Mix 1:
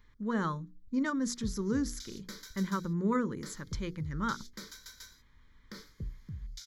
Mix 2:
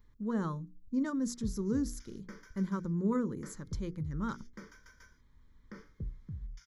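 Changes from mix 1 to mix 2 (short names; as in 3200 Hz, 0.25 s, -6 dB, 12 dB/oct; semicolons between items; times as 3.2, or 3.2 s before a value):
speech: add bell 2400 Hz -11 dB 2.5 oct; background: add running mean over 11 samples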